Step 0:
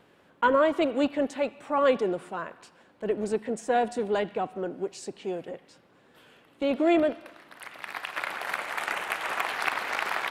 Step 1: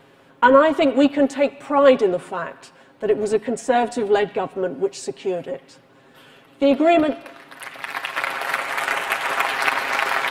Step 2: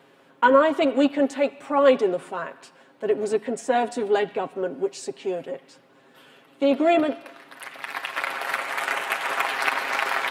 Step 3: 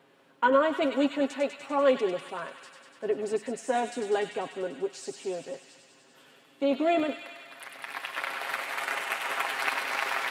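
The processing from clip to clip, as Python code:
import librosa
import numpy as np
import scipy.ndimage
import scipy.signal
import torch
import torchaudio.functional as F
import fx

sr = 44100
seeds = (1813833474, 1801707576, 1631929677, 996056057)

y1 = x + 0.59 * np.pad(x, (int(7.4 * sr / 1000.0), 0))[:len(x)]
y1 = y1 * librosa.db_to_amplitude(7.0)
y2 = scipy.signal.sosfilt(scipy.signal.butter(2, 170.0, 'highpass', fs=sr, output='sos'), y1)
y2 = y2 * librosa.db_to_amplitude(-3.5)
y3 = fx.echo_wet_highpass(y2, sr, ms=98, feedback_pct=79, hz=2300.0, wet_db=-4.5)
y3 = y3 * librosa.db_to_amplitude(-6.0)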